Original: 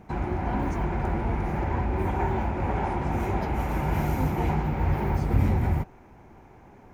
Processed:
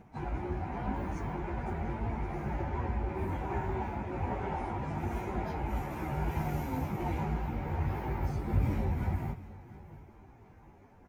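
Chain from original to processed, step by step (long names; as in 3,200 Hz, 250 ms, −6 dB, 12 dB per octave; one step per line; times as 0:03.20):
on a send: repeating echo 439 ms, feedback 34%, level −18 dB
on the sum: time stretch by phase vocoder 1.6×
level −5 dB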